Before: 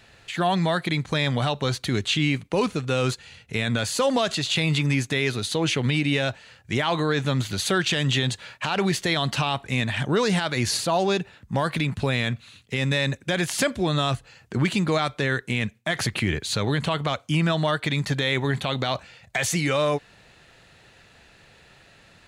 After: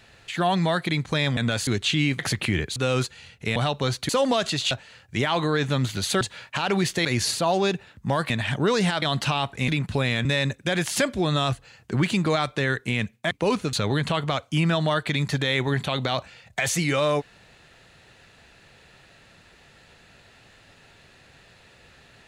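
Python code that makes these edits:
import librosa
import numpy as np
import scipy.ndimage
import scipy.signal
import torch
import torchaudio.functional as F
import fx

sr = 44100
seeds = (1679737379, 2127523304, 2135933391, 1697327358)

y = fx.edit(x, sr, fx.swap(start_s=1.37, length_s=0.53, other_s=3.64, other_length_s=0.3),
    fx.swap(start_s=2.42, length_s=0.42, other_s=15.93, other_length_s=0.57),
    fx.cut(start_s=4.56, length_s=1.71),
    fx.cut(start_s=7.77, length_s=0.52),
    fx.swap(start_s=9.13, length_s=0.66, other_s=10.51, other_length_s=1.25),
    fx.cut(start_s=12.33, length_s=0.54), tone=tone)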